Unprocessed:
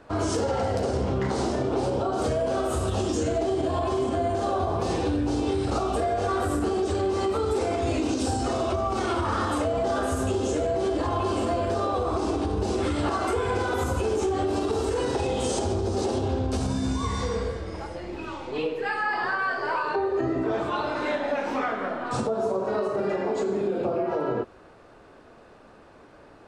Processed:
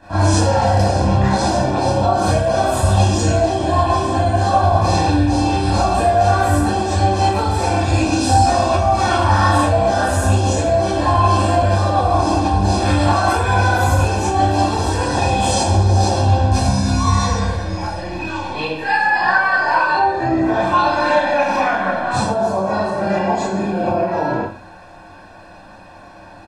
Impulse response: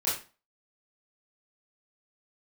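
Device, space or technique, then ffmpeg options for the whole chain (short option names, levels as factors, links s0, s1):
microphone above a desk: -filter_complex "[0:a]aecho=1:1:1.2:0.89[s0];[1:a]atrim=start_sample=2205[s1];[s0][s1]afir=irnorm=-1:irlink=0,volume=1.19"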